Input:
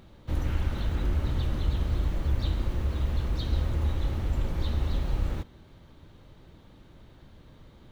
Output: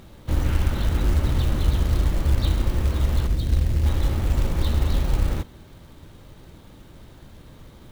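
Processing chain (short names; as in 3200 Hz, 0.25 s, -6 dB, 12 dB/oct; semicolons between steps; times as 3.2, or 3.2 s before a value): 3.27–3.86 EQ curve 160 Hz 0 dB, 730 Hz -7 dB, 1300 Hz -17 dB, 1800 Hz -8 dB; companded quantiser 6-bit; gain +6.5 dB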